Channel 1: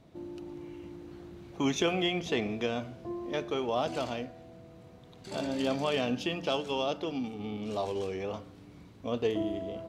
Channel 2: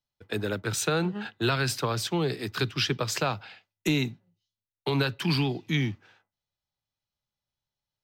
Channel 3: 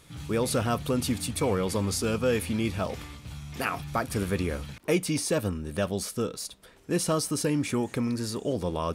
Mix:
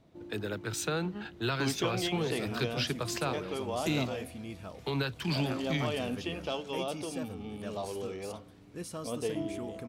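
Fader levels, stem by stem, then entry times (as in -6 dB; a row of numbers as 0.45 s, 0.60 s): -4.5 dB, -6.0 dB, -14.5 dB; 0.00 s, 0.00 s, 1.85 s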